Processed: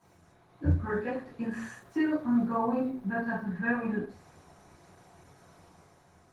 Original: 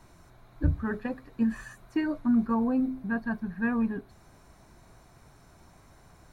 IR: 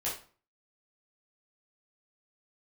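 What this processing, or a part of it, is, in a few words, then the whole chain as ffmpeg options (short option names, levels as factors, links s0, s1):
far-field microphone of a smart speaker: -filter_complex "[1:a]atrim=start_sample=2205[s0];[0:a][s0]afir=irnorm=-1:irlink=0,highpass=f=92:w=0.5412,highpass=f=92:w=1.3066,dynaudnorm=f=100:g=13:m=1.78,volume=0.473" -ar 48000 -c:a libopus -b:a 16k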